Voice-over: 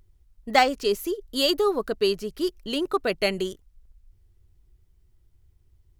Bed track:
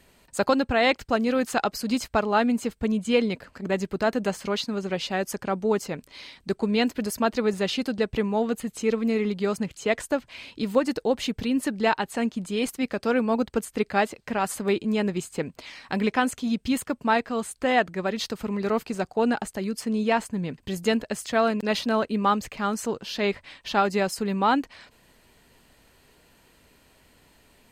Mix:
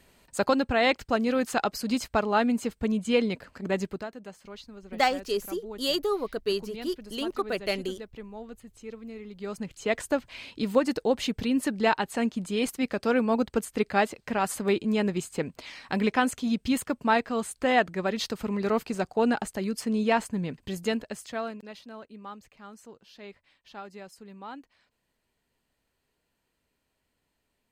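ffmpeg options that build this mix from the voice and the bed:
ffmpeg -i stem1.wav -i stem2.wav -filter_complex "[0:a]adelay=4450,volume=-5dB[link_01];[1:a]volume=14dB,afade=type=out:start_time=3.85:duration=0.23:silence=0.177828,afade=type=in:start_time=9.29:duration=0.79:silence=0.158489,afade=type=out:start_time=20.35:duration=1.38:silence=0.112202[link_02];[link_01][link_02]amix=inputs=2:normalize=0" out.wav

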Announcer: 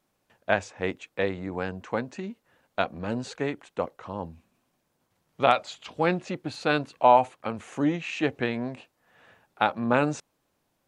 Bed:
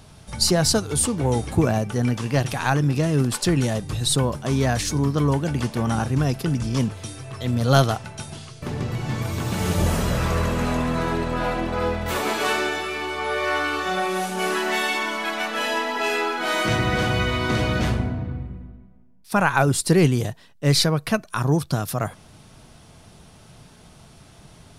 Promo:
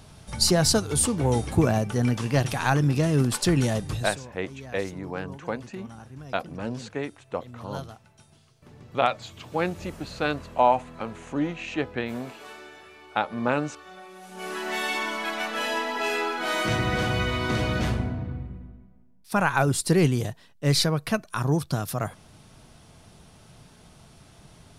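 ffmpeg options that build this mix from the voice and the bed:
ffmpeg -i stem1.wav -i stem2.wav -filter_complex "[0:a]adelay=3550,volume=-2dB[link_01];[1:a]volume=16dB,afade=type=out:start_time=3.9:duration=0.26:silence=0.105925,afade=type=in:start_time=14.21:duration=0.76:silence=0.133352[link_02];[link_01][link_02]amix=inputs=2:normalize=0" out.wav

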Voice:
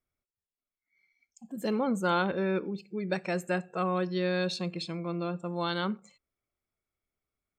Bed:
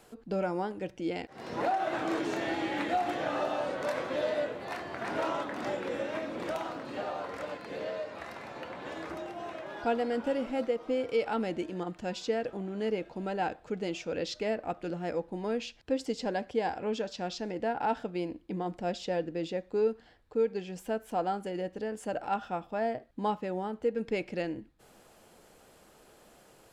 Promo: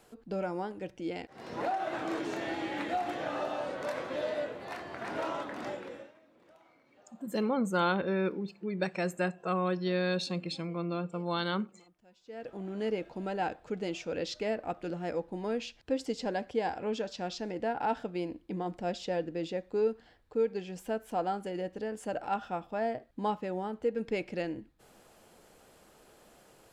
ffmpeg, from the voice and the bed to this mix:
ffmpeg -i stem1.wav -i stem2.wav -filter_complex "[0:a]adelay=5700,volume=-1dB[link_01];[1:a]volume=22.5dB,afade=type=out:start_time=5.61:duration=0.53:silence=0.0668344,afade=type=in:start_time=12.25:duration=0.46:silence=0.0530884[link_02];[link_01][link_02]amix=inputs=2:normalize=0" out.wav

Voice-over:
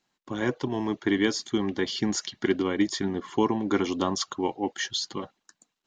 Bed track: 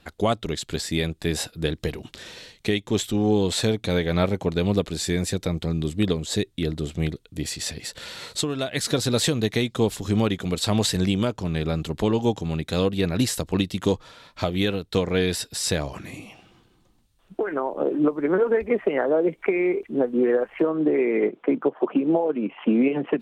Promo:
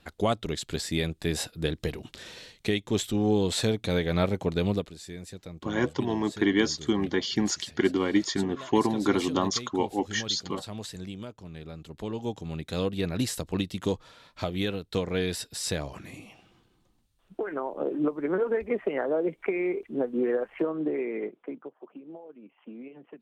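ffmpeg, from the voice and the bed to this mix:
ffmpeg -i stem1.wav -i stem2.wav -filter_complex "[0:a]adelay=5350,volume=0.5dB[link_01];[1:a]volume=7dB,afade=type=out:start_time=4.67:duration=0.27:silence=0.223872,afade=type=in:start_time=11.8:duration=1.09:silence=0.298538,afade=type=out:start_time=20.62:duration=1.14:silence=0.133352[link_02];[link_01][link_02]amix=inputs=2:normalize=0" out.wav

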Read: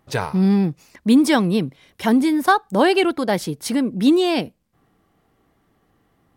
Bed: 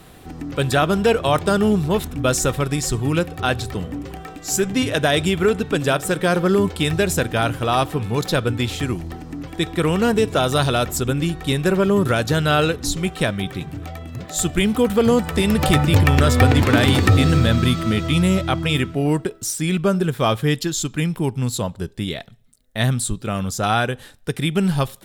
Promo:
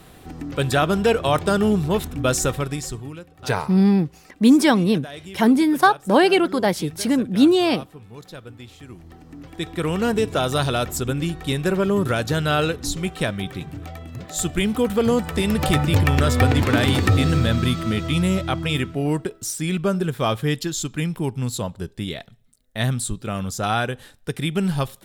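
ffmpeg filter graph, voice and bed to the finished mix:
ffmpeg -i stem1.wav -i stem2.wav -filter_complex "[0:a]adelay=3350,volume=0.5dB[link_01];[1:a]volume=14.5dB,afade=type=out:start_time=2.43:duration=0.75:silence=0.133352,afade=type=in:start_time=8.84:duration=1.27:silence=0.158489[link_02];[link_01][link_02]amix=inputs=2:normalize=0" out.wav

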